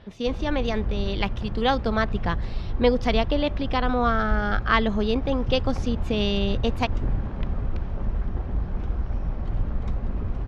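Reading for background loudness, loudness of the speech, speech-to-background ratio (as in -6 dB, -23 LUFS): -31.0 LUFS, -25.5 LUFS, 5.5 dB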